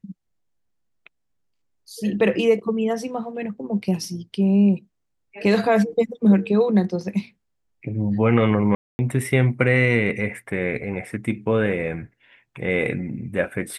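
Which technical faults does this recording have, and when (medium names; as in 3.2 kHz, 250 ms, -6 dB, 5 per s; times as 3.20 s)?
8.75–8.99 s: dropout 240 ms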